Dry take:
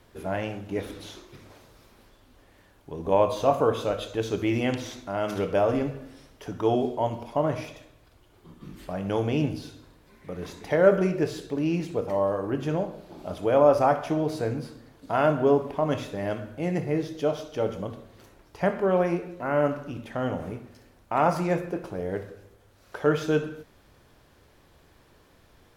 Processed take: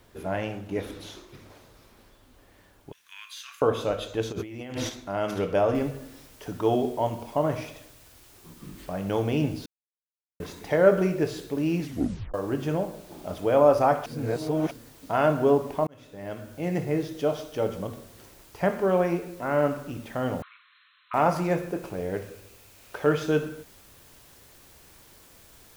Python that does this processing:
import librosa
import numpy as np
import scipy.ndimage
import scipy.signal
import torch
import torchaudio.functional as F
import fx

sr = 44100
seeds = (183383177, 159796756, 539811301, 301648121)

y = fx.steep_highpass(x, sr, hz=1500.0, slope=48, at=(2.92, 3.62))
y = fx.over_compress(y, sr, threshold_db=-35.0, ratio=-1.0, at=(4.31, 4.88), fade=0.02)
y = fx.noise_floor_step(y, sr, seeds[0], at_s=5.75, before_db=-70, after_db=-55, tilt_db=0.0)
y = fx.brickwall_bandpass(y, sr, low_hz=1000.0, high_hz=4200.0, at=(20.42, 21.14))
y = fx.peak_eq(y, sr, hz=2500.0, db=6.0, octaves=0.29, at=(21.82, 23.15))
y = fx.edit(y, sr, fx.silence(start_s=9.66, length_s=0.74),
    fx.tape_stop(start_s=11.81, length_s=0.53),
    fx.reverse_span(start_s=14.06, length_s=0.65),
    fx.fade_in_span(start_s=15.87, length_s=0.89), tone=tone)